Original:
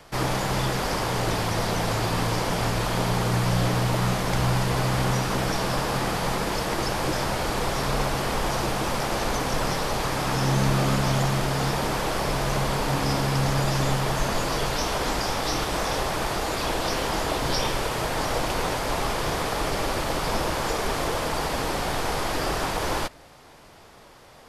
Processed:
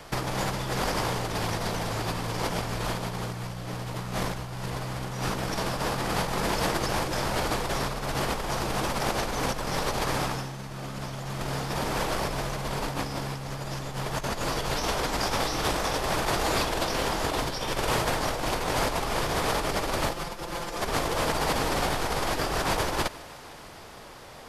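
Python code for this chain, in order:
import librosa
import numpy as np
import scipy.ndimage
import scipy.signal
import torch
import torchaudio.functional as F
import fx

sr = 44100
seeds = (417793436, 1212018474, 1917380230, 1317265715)

y = fx.comb(x, sr, ms=5.8, depth=0.98, at=(20.11, 20.81))
y = fx.over_compress(y, sr, threshold_db=-28.0, ratio=-0.5)
y = fx.echo_thinned(y, sr, ms=152, feedback_pct=83, hz=360.0, wet_db=-21)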